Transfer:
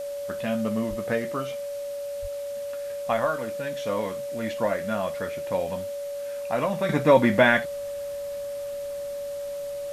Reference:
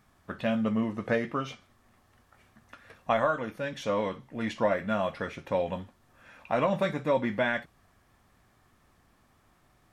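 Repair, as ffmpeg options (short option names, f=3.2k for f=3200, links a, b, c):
-filter_complex "[0:a]bandreject=f=570:w=30,asplit=3[a][b][c];[a]afade=t=out:st=0.89:d=0.02[d];[b]highpass=f=140:w=0.5412,highpass=f=140:w=1.3066,afade=t=in:st=0.89:d=0.02,afade=t=out:st=1.01:d=0.02[e];[c]afade=t=in:st=1.01:d=0.02[f];[d][e][f]amix=inputs=3:normalize=0,asplit=3[g][h][i];[g]afade=t=out:st=2.21:d=0.02[j];[h]highpass=f=140:w=0.5412,highpass=f=140:w=1.3066,afade=t=in:st=2.21:d=0.02,afade=t=out:st=2.33:d=0.02[k];[i]afade=t=in:st=2.33:d=0.02[l];[j][k][l]amix=inputs=3:normalize=0,afwtdn=0.004,asetnsamples=n=441:p=0,asendcmd='6.89 volume volume -9.5dB',volume=0dB"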